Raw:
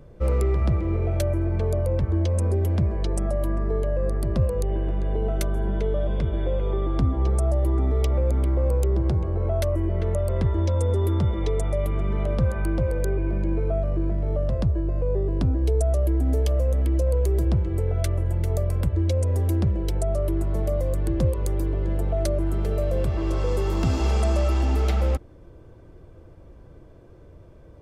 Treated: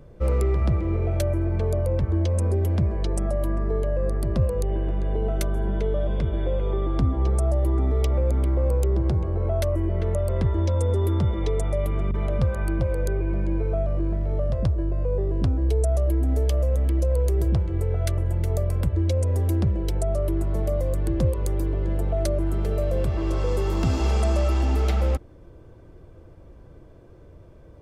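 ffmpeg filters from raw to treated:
-filter_complex "[0:a]asettb=1/sr,asplit=3[s0][s1][s2];[s0]atrim=end=12.114[s3];[s1]atrim=start=12.11:end=18.18,asetpts=PTS-STARTPTS,afade=t=in:d=0.004:c=qsin,afade=t=out:st=6.066:d=0.004:c=qsin,acrossover=split=270[s4][s5];[s5]adelay=30[s6];[s4][s6]amix=inputs=2:normalize=0,atrim=end_sample=267687[s7];[s2]atrim=start=18.176[s8];[s3][s7]acrossfade=d=0.004:c1=hsin:c2=qsin[s9];[s9][s8]acrossfade=d=0.004:c1=qsin:c2=hsin"

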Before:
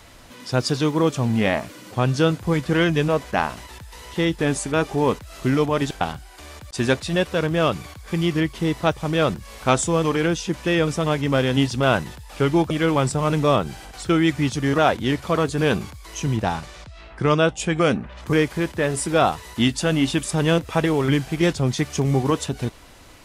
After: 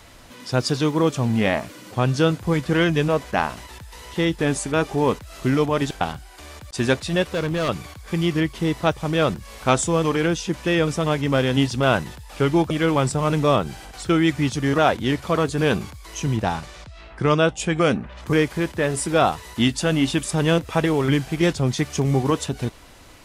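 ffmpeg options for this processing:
-filter_complex "[0:a]asettb=1/sr,asplit=3[s0][s1][s2];[s0]atrim=end=7.224[s3];[s1]atrim=start=7.22:end=7.69,asetpts=PTS-STARTPTS,afade=t=in:d=0.004:c=qsin,afade=t=out:st=0.466:d=0.004:c=qsin,volume=9.44,asoftclip=hard,volume=0.106[s4];[s2]atrim=start=7.686[s5];[s3][s4]acrossfade=d=0.004:c1=hsin:c2=qsin[s6];[s6][s5]acrossfade=d=0.004:c1=qsin:c2=hsin"

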